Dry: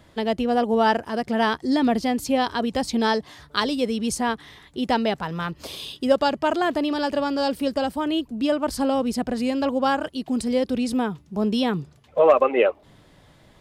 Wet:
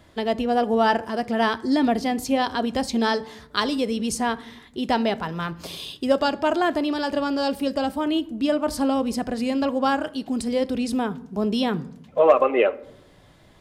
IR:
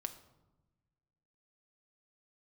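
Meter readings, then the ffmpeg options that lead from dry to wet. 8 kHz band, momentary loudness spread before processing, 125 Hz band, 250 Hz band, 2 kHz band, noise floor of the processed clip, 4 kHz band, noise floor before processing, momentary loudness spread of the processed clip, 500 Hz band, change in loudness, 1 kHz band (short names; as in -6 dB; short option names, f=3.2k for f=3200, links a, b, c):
0.0 dB, 8 LU, -1.0 dB, 0.0 dB, 0.0 dB, -53 dBFS, -0.5 dB, -54 dBFS, 8 LU, -0.5 dB, -0.5 dB, 0.0 dB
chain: -filter_complex "[0:a]asplit=2[a][b];[1:a]atrim=start_sample=2205,asetrate=74970,aresample=44100[c];[b][c]afir=irnorm=-1:irlink=0,volume=5.5dB[d];[a][d]amix=inputs=2:normalize=0,volume=-5.5dB"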